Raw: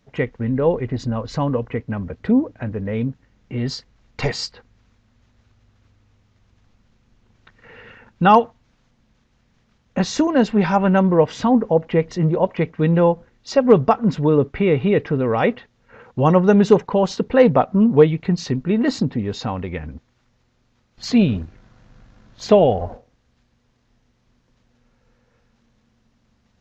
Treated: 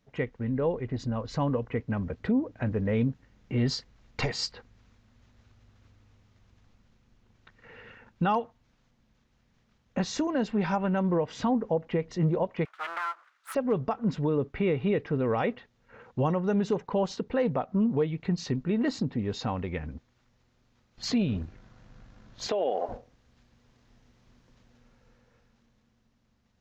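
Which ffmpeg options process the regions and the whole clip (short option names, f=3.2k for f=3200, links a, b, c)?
-filter_complex "[0:a]asettb=1/sr,asplit=3[a][b][c];[a]atrim=end=12.654[d];[b]atrim=start=12.65:end=13.55,asetpts=PTS-STARTPTS,afade=t=in:d=0.004:c=qsin,afade=t=out:st=0.896:d=0.004:c=qsin,aeval=exprs='abs(val(0))':c=same,highpass=f=1.3k:t=q:w=4.7,acompressor=threshold=-22dB:ratio=5:attack=3.2:release=140:knee=1:detection=peak[e];[c]atrim=start=13.546[f];[d][e]acrossfade=d=0.004:c1=hsin:c2=qsin[g];[g][f]acrossfade=d=0.004:c1=qsin:c2=hsin,asettb=1/sr,asplit=3[h][i][j];[h]atrim=end=22.484[k];[i]atrim=start=22.48:end=22.89,asetpts=PTS-STARTPTS,afade=t=in:d=0.004:c=qsin,afade=t=out:st=0.406:d=0.004:c=qsin,highpass=f=300:w=0.5412,highpass=f=300:w=1.3066,acompressor=threshold=-19dB:ratio=5:attack=3.2:release=140:knee=1:detection=peak[l];[j]atrim=start=22.886[m];[k][l]acrossfade=d=0.004:c1=hsin:c2=qsin[n];[n][m]acrossfade=d=0.004:c1=qsin:c2=hsin,dynaudnorm=f=180:g=21:m=16dB,alimiter=limit=-9.5dB:level=0:latency=1:release=254,volume=-8.5dB"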